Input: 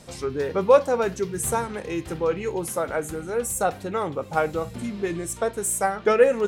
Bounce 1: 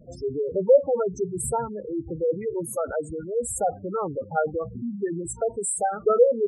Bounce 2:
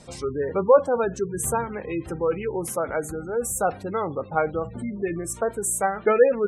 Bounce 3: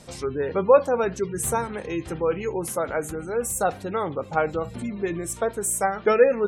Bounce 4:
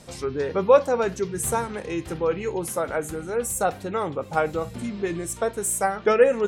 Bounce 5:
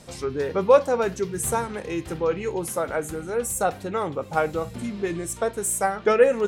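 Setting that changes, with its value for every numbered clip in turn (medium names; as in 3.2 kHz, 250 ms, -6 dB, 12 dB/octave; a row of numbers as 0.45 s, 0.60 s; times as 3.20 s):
spectral gate, under each frame's peak: -10 dB, -25 dB, -35 dB, -50 dB, -60 dB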